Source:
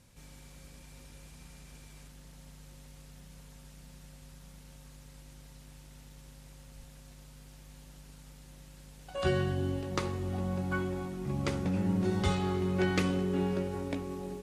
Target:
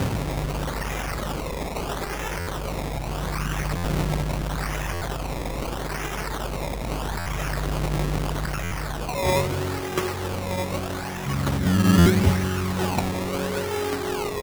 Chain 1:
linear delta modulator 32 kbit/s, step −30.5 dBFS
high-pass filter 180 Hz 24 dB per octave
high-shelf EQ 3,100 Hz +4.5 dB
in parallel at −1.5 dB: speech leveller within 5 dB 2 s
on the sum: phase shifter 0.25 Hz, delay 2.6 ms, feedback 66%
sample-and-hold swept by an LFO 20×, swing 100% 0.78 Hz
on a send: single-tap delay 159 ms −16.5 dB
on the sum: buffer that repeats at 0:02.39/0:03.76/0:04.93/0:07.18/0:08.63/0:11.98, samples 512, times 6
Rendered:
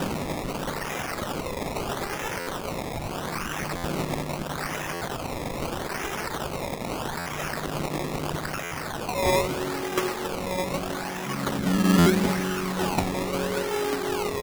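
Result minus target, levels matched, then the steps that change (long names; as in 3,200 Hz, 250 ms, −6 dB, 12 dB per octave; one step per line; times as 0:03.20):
125 Hz band −4.5 dB
change: high-pass filter 59 Hz 24 dB per octave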